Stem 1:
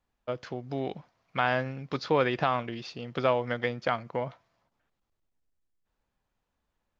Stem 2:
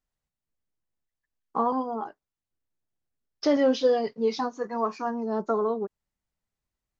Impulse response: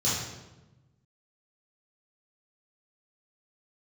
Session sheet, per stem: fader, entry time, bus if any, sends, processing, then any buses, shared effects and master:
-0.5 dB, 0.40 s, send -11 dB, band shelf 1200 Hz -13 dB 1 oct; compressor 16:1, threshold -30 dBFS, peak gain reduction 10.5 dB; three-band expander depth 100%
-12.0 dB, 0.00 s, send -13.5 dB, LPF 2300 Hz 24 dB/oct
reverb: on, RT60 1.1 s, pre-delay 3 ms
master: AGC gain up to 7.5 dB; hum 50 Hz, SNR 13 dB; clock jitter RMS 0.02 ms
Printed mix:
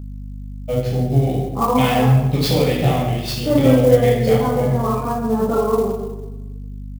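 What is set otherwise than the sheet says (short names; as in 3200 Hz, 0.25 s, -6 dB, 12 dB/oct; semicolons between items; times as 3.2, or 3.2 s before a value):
stem 2: send -13.5 dB -> -7.5 dB; reverb return +8.5 dB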